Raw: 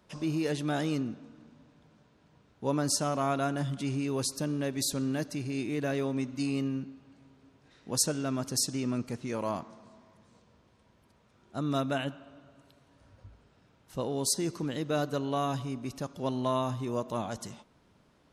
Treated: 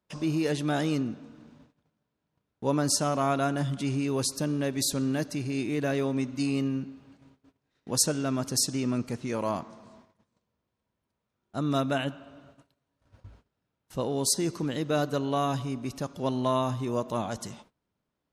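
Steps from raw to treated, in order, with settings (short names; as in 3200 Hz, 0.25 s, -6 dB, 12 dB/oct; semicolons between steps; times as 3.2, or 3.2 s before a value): gate -57 dBFS, range -21 dB; gain +3 dB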